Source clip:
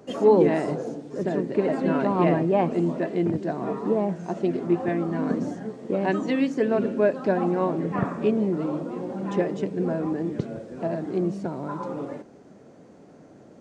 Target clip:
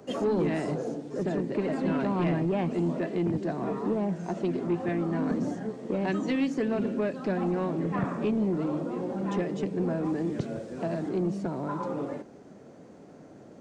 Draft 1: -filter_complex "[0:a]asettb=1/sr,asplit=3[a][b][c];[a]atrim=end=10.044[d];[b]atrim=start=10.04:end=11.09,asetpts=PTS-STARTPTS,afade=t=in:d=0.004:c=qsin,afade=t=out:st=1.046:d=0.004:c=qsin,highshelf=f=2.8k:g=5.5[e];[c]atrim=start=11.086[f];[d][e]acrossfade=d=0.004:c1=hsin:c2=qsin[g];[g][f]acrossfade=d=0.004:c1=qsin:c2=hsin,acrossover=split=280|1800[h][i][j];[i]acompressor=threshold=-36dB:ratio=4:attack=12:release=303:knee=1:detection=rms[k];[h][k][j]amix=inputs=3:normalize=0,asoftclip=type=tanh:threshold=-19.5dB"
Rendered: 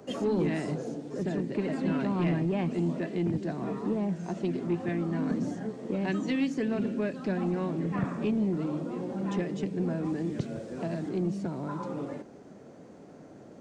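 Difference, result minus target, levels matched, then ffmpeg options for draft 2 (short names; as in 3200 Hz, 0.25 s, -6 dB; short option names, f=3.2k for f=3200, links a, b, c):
compressor: peak gain reduction +5.5 dB
-filter_complex "[0:a]asettb=1/sr,asplit=3[a][b][c];[a]atrim=end=10.044[d];[b]atrim=start=10.04:end=11.09,asetpts=PTS-STARTPTS,afade=t=in:d=0.004:c=qsin,afade=t=out:st=1.046:d=0.004:c=qsin,highshelf=f=2.8k:g=5.5[e];[c]atrim=start=11.086[f];[d][e]acrossfade=d=0.004:c1=hsin:c2=qsin[g];[g][f]acrossfade=d=0.004:c1=qsin:c2=hsin,acrossover=split=280|1800[h][i][j];[i]acompressor=threshold=-28.5dB:ratio=4:attack=12:release=303:knee=1:detection=rms[k];[h][k][j]amix=inputs=3:normalize=0,asoftclip=type=tanh:threshold=-19.5dB"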